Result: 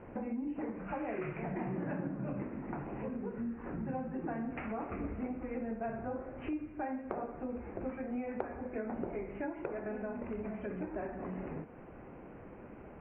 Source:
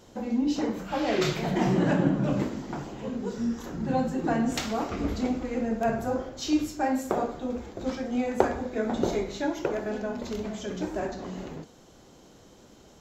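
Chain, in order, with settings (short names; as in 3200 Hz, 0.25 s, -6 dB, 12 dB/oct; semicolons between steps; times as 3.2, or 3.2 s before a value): steep low-pass 2600 Hz 96 dB/oct; compressor 4:1, threshold -42 dBFS, peak gain reduction 22 dB; gain +3.5 dB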